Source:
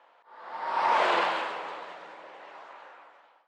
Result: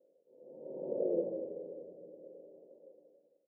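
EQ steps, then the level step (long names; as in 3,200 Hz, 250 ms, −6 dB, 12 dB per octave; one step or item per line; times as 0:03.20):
Chebyshev low-pass filter 550 Hz, order 6
+2.0 dB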